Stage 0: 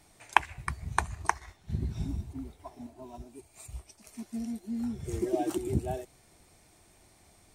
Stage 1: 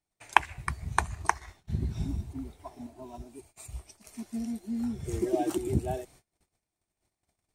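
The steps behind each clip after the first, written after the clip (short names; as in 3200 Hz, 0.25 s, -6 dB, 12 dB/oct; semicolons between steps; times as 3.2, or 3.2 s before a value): gate -56 dBFS, range -29 dB; gain +1.5 dB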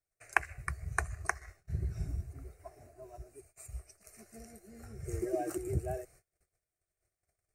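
fixed phaser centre 920 Hz, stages 6; gain -2 dB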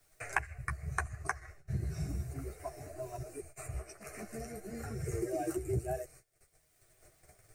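chorus voices 6, 0.58 Hz, delay 11 ms, depth 4.7 ms; three-band squash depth 70%; gain +4 dB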